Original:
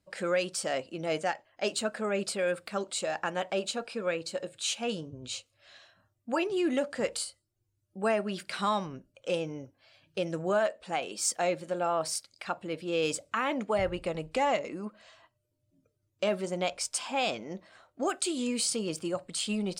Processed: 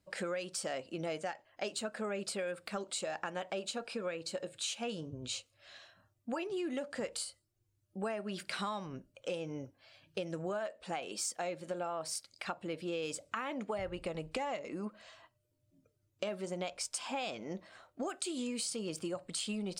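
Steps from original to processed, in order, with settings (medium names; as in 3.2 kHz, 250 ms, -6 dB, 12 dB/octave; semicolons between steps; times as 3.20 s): compression, threshold -35 dBFS, peak gain reduction 12 dB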